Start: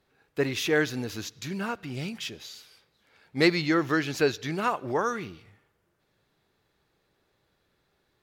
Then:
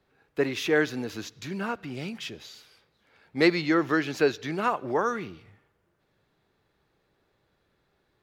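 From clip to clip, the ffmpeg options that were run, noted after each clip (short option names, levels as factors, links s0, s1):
-filter_complex "[0:a]highshelf=f=3800:g=-7.5,acrossover=split=170|1100|3000[s0][s1][s2][s3];[s0]acompressor=threshold=0.00398:ratio=6[s4];[s4][s1][s2][s3]amix=inputs=4:normalize=0,volume=1.19"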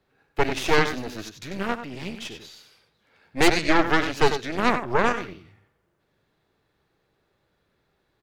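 -af "aecho=1:1:94:0.398,aeval=exprs='0.376*(cos(1*acos(clip(val(0)/0.376,-1,1)))-cos(1*PI/2))+0.133*(cos(6*acos(clip(val(0)/0.376,-1,1)))-cos(6*PI/2))':c=same"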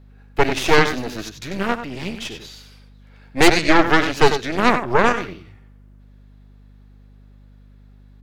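-af "aeval=exprs='val(0)+0.00282*(sin(2*PI*50*n/s)+sin(2*PI*2*50*n/s)/2+sin(2*PI*3*50*n/s)/3+sin(2*PI*4*50*n/s)/4+sin(2*PI*5*50*n/s)/5)':c=same,volume=1.88"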